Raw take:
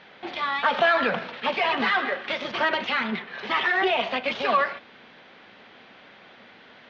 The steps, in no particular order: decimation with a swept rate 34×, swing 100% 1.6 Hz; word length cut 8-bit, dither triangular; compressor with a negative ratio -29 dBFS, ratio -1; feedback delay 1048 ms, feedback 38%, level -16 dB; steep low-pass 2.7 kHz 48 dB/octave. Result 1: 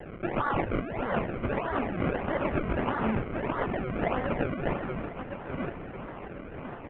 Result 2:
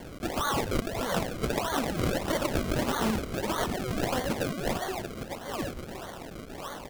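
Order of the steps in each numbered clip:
word length cut > decimation with a swept rate > feedback delay > compressor with a negative ratio > steep low-pass; steep low-pass > word length cut > feedback delay > decimation with a swept rate > compressor with a negative ratio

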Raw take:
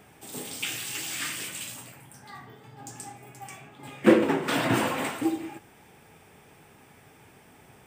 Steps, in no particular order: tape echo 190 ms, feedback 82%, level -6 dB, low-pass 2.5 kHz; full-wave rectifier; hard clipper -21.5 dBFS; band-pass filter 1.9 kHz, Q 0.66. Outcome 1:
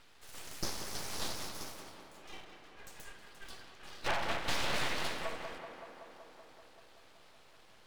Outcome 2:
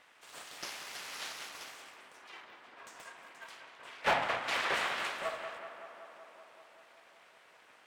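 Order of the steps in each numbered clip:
hard clipper > band-pass filter > full-wave rectifier > tape echo; full-wave rectifier > tape echo > band-pass filter > hard clipper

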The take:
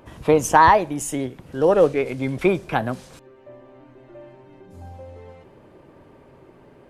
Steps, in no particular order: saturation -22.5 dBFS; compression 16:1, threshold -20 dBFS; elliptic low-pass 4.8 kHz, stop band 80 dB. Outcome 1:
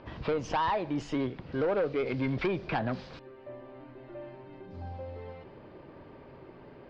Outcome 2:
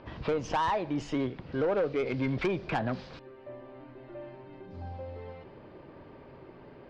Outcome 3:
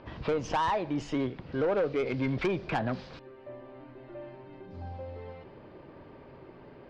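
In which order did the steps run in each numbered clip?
compression > saturation > elliptic low-pass; compression > elliptic low-pass > saturation; elliptic low-pass > compression > saturation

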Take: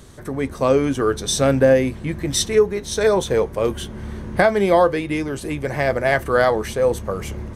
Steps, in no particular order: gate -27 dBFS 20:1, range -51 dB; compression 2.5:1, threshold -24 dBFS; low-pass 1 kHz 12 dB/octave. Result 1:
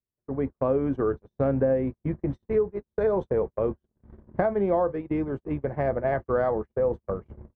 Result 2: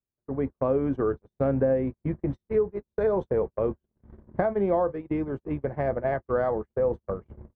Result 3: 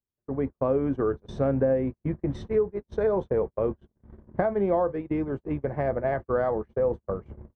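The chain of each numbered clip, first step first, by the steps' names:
low-pass > compression > gate; compression > low-pass > gate; compression > gate > low-pass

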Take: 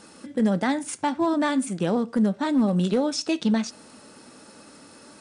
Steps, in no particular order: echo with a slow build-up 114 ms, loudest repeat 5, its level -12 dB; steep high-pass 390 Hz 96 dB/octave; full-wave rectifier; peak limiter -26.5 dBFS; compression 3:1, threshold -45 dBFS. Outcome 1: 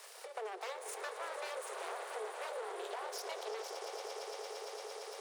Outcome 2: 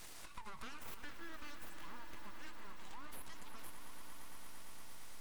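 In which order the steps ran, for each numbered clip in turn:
echo with a slow build-up > full-wave rectifier > steep high-pass > compression > peak limiter; peak limiter > steep high-pass > full-wave rectifier > echo with a slow build-up > compression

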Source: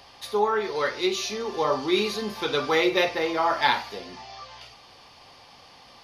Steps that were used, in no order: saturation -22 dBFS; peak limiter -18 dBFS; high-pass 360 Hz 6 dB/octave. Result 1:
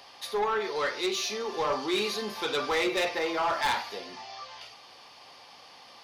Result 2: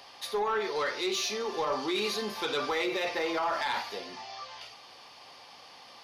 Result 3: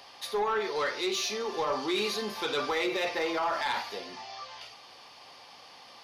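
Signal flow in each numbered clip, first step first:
high-pass > saturation > peak limiter; peak limiter > high-pass > saturation; high-pass > peak limiter > saturation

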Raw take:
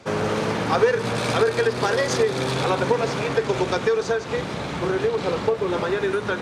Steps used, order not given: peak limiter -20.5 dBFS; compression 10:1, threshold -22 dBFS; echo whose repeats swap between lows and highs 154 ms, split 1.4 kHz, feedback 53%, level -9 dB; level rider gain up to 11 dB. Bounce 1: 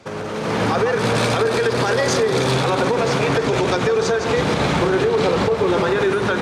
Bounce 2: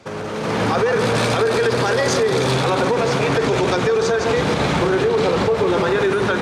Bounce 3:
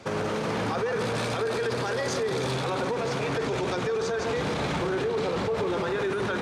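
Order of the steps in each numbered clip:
compression > echo whose repeats swap between lows and highs > peak limiter > level rider; echo whose repeats swap between lows and highs > peak limiter > compression > level rider; echo whose repeats swap between lows and highs > compression > level rider > peak limiter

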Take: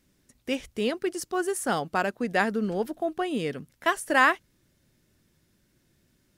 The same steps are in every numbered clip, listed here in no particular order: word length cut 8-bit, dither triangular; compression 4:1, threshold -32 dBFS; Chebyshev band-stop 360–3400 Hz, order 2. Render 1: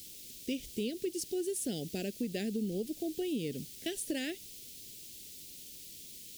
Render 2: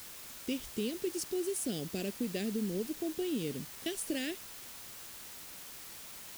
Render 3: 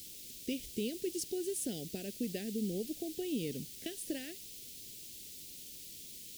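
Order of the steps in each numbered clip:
word length cut > Chebyshev band-stop > compression; Chebyshev band-stop > compression > word length cut; compression > word length cut > Chebyshev band-stop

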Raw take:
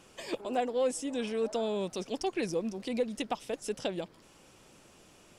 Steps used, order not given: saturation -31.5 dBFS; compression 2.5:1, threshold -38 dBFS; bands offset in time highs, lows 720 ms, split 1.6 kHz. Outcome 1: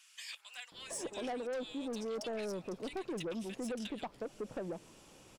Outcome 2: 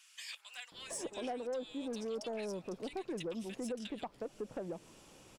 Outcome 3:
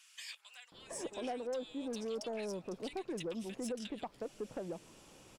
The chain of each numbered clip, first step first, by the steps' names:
bands offset in time > saturation > compression; bands offset in time > compression > saturation; compression > bands offset in time > saturation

